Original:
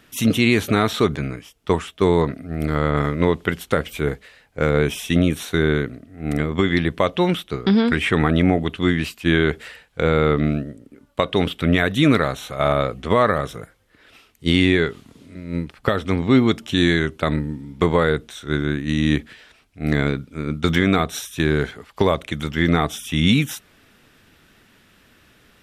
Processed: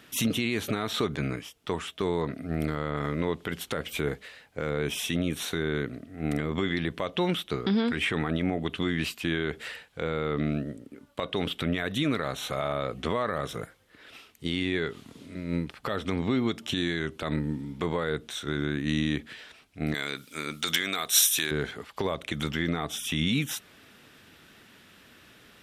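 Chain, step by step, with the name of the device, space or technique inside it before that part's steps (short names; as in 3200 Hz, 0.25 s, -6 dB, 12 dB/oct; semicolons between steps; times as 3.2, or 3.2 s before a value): broadcast voice chain (HPF 110 Hz 6 dB/oct; de-esser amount 40%; compressor 3:1, threshold -24 dBFS, peak gain reduction 10.5 dB; bell 3500 Hz +2 dB; limiter -16.5 dBFS, peak gain reduction 10 dB); 19.94–21.51 tilt +4.5 dB/oct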